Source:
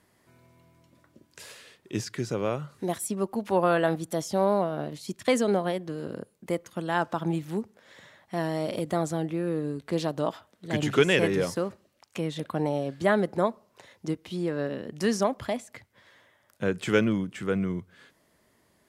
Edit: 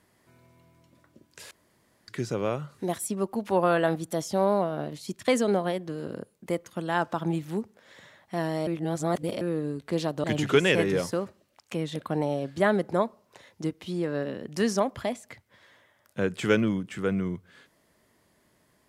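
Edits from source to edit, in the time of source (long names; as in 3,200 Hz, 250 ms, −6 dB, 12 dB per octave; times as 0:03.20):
0:01.51–0:02.08: fill with room tone
0:08.67–0:09.41: reverse
0:10.24–0:10.68: remove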